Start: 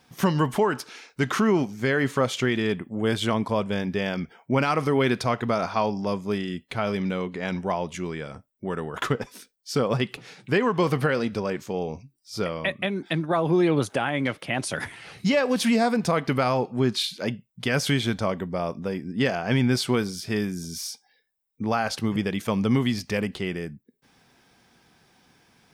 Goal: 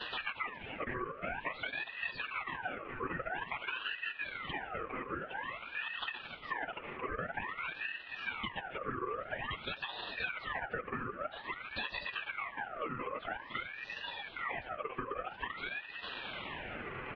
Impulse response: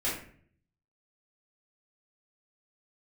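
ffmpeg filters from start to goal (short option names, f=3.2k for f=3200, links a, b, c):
-filter_complex "[0:a]aeval=exprs='val(0)+0.5*0.0282*sgn(val(0))':c=same,asplit=2[a][b];[1:a]atrim=start_sample=2205,adelay=115[c];[b][c]afir=irnorm=-1:irlink=0,volume=-25.5dB[d];[a][d]amix=inputs=2:normalize=0,acontrast=70,afftfilt=real='hypot(re,im)*cos(2*PI*random(0))':imag='hypot(re,im)*sin(2*PI*random(1))':win_size=512:overlap=0.75,asplit=2[e][f];[f]adelay=1633,volume=-17dB,highshelf=f=4k:g=-36.7[g];[e][g]amix=inputs=2:normalize=0,highpass=f=310:t=q:w=0.5412,highpass=f=310:t=q:w=1.307,lowpass=f=2.8k:t=q:w=0.5176,lowpass=f=2.8k:t=q:w=0.7071,lowpass=f=2.8k:t=q:w=1.932,afreqshift=130,atempo=1.5,aecho=1:1:5.4:0.78,acompressor=threshold=-39dB:ratio=4,asetrate=30296,aresample=44100,atempo=1.45565,aeval=exprs='val(0)*sin(2*PI*1500*n/s+1500*0.5/0.5*sin(2*PI*0.5*n/s))':c=same,volume=2.5dB"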